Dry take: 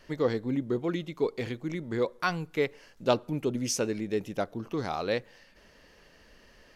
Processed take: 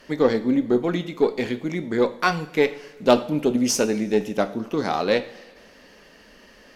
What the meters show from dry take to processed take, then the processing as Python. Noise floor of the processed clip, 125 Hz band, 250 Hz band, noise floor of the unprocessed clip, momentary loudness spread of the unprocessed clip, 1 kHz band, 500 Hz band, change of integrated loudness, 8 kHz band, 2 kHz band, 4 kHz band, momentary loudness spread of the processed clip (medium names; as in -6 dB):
-51 dBFS, +3.5 dB, +9.5 dB, -59 dBFS, 6 LU, +8.5 dB, +8.5 dB, +8.5 dB, +7.0 dB, +8.0 dB, +8.0 dB, 7 LU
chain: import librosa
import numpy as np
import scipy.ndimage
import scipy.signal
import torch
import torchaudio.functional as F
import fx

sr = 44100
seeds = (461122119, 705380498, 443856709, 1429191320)

y = fx.cheby_harmonics(x, sr, harmonics=(8,), levels_db=(-28,), full_scale_db=-8.5)
y = fx.low_shelf_res(y, sr, hz=150.0, db=-6.5, q=1.5)
y = fx.rev_double_slope(y, sr, seeds[0], early_s=0.42, late_s=1.8, knee_db=-16, drr_db=8.5)
y = y * librosa.db_to_amplitude(7.0)